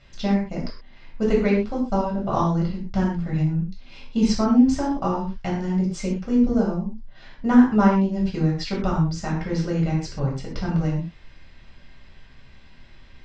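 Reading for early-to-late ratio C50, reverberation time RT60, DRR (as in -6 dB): 4.5 dB, not exponential, -4.0 dB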